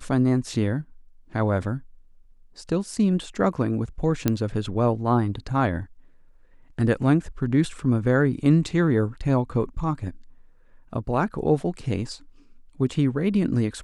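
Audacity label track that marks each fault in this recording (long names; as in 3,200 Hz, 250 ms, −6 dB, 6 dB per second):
4.280000	4.280000	click −7 dBFS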